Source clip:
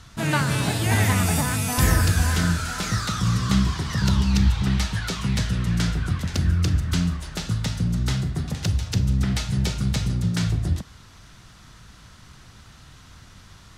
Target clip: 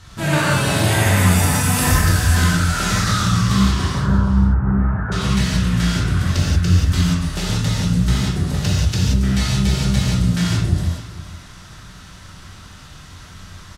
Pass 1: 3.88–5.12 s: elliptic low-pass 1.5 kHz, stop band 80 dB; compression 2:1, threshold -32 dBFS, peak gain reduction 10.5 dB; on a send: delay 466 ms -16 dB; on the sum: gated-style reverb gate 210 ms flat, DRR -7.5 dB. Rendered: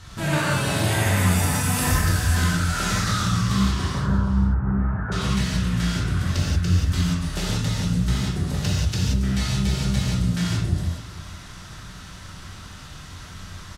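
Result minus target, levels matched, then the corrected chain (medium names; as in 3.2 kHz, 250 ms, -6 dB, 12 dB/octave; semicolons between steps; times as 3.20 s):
compression: peak gain reduction +5.5 dB
3.88–5.12 s: elliptic low-pass 1.5 kHz, stop band 80 dB; compression 2:1, threshold -21.5 dBFS, peak gain reduction 5 dB; on a send: delay 466 ms -16 dB; on the sum: gated-style reverb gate 210 ms flat, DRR -7.5 dB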